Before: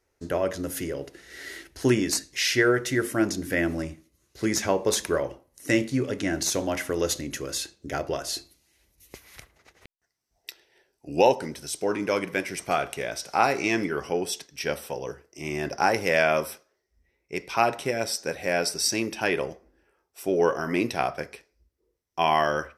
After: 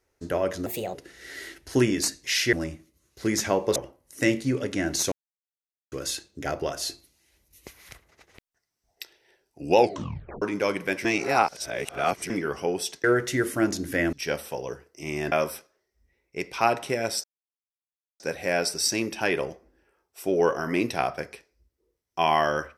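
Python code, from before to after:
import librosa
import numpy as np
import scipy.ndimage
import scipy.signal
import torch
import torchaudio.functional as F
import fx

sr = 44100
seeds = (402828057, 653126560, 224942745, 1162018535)

y = fx.edit(x, sr, fx.speed_span(start_s=0.66, length_s=0.37, speed=1.33),
    fx.move(start_s=2.62, length_s=1.09, to_s=14.51),
    fx.cut(start_s=4.94, length_s=0.29),
    fx.silence(start_s=6.59, length_s=0.8),
    fx.tape_stop(start_s=11.24, length_s=0.65),
    fx.reverse_span(start_s=12.52, length_s=1.25),
    fx.cut(start_s=15.7, length_s=0.58),
    fx.insert_silence(at_s=18.2, length_s=0.96), tone=tone)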